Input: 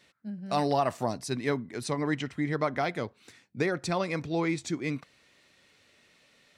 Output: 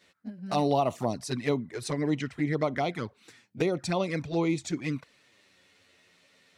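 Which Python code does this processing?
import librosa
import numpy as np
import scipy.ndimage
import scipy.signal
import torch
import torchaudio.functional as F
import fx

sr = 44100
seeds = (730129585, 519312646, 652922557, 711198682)

y = fx.highpass(x, sr, hz=57.0, slope=6)
y = fx.env_flanger(y, sr, rest_ms=11.9, full_db=-25.0)
y = y * librosa.db_to_amplitude(3.0)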